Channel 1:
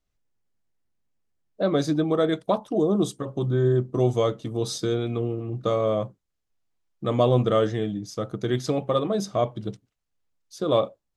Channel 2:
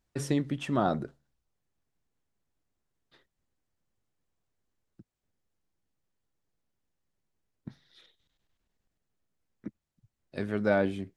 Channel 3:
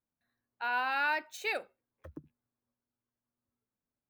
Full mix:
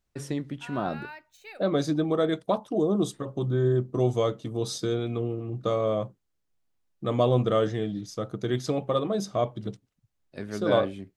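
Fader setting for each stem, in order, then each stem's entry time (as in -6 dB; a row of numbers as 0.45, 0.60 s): -2.5, -3.0, -12.0 dB; 0.00, 0.00, 0.00 s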